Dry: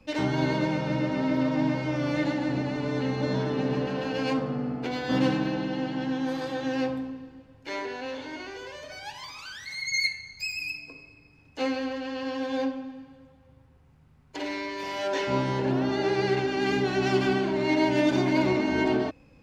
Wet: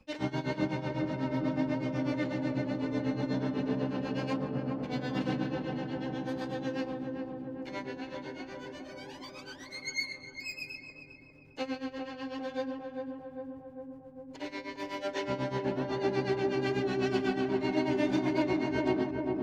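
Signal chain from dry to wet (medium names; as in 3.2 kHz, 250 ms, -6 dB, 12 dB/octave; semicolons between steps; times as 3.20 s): tremolo 8.1 Hz, depth 87%; filtered feedback delay 401 ms, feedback 78%, low-pass 1.1 kHz, level -3.5 dB; trim -4 dB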